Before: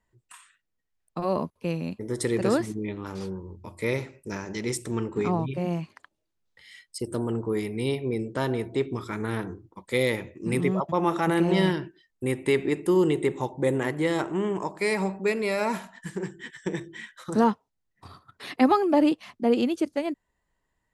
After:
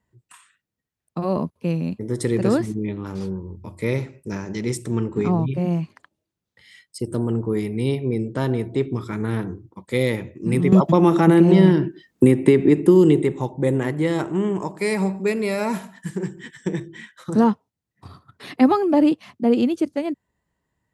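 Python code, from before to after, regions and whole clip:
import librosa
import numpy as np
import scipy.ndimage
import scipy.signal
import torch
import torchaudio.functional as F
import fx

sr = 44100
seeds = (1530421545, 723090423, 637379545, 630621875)

y = fx.chain(x, sr, fx.peak_eq(hz=280.0, db=6.0, octaves=1.5),
    fx.band_squash(depth_pct=100), at=(10.72, 13.22))
y = fx.chain(y, sr, fx.high_shelf(hz=8300.0, db=7.5),
    fx.echo_single(ms=146, db=-24.0), at=(14.2, 16.71))
y = scipy.signal.sosfilt(scipy.signal.butter(2, 100.0, 'highpass', fs=sr, output='sos'), y)
y = fx.low_shelf(y, sr, hz=250.0, db=12.0)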